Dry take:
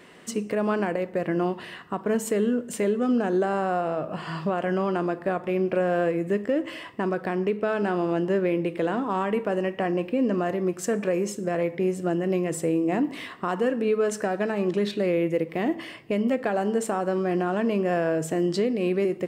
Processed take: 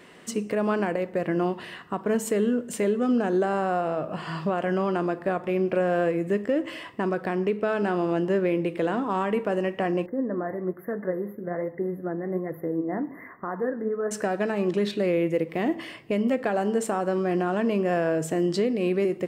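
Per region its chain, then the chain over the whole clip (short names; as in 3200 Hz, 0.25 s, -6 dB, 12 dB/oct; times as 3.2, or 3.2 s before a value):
10.06–14.11 brick-wall FIR band-stop 2100–11000 Hz + flange 1.2 Hz, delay 0.7 ms, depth 9.8 ms, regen +64%
whole clip: dry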